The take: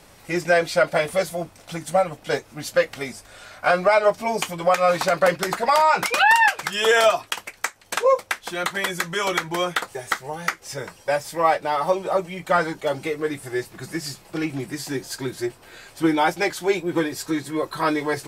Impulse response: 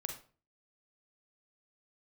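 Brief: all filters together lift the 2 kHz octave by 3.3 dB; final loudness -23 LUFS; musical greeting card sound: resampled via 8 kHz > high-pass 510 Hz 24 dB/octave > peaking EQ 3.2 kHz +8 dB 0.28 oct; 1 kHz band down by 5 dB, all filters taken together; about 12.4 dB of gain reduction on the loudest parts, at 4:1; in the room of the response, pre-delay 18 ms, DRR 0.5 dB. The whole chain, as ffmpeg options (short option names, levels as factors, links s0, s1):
-filter_complex "[0:a]equalizer=f=1000:t=o:g=-8.5,equalizer=f=2000:t=o:g=6.5,acompressor=threshold=0.0501:ratio=4,asplit=2[s0][s1];[1:a]atrim=start_sample=2205,adelay=18[s2];[s1][s2]afir=irnorm=-1:irlink=0,volume=1[s3];[s0][s3]amix=inputs=2:normalize=0,aresample=8000,aresample=44100,highpass=f=510:w=0.5412,highpass=f=510:w=1.3066,equalizer=f=3200:t=o:w=0.28:g=8,volume=1.68"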